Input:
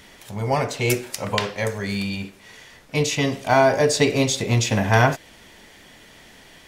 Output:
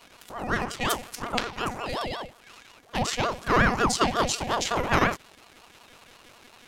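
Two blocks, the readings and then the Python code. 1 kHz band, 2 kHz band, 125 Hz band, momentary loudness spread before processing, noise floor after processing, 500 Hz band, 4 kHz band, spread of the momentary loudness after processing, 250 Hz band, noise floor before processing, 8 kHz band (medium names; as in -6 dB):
-2.0 dB, -3.0 dB, -11.0 dB, 12 LU, -55 dBFS, -8.5 dB, -3.5 dB, 13 LU, -6.0 dB, -49 dBFS, -5.0 dB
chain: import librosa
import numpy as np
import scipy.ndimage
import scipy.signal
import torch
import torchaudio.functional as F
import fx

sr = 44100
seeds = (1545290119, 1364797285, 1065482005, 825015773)

y = fx.robotise(x, sr, hz=242.0)
y = fx.ring_lfo(y, sr, carrier_hz=600.0, swing_pct=60, hz=5.5)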